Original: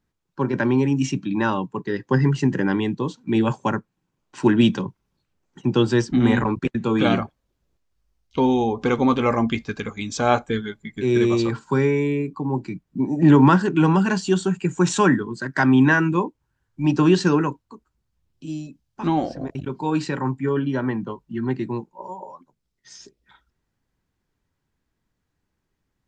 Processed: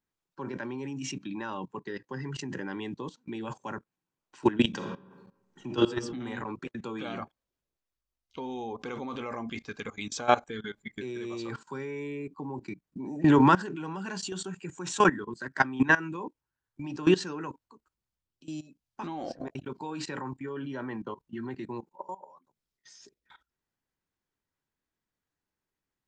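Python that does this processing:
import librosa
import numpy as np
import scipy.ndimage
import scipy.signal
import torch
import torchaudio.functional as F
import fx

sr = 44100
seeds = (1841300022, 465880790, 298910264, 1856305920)

y = fx.reverb_throw(x, sr, start_s=4.69, length_s=1.15, rt60_s=1.0, drr_db=2.5)
y = fx.low_shelf(y, sr, hz=230.0, db=-10.5)
y = fx.level_steps(y, sr, step_db=18)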